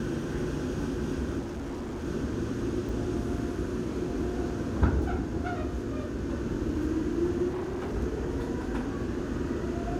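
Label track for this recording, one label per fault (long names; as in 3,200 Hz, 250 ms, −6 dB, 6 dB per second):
1.390000	2.050000	clipping −32.5 dBFS
2.890000	2.890000	drop-out 2.8 ms
7.480000	7.950000	clipping −30 dBFS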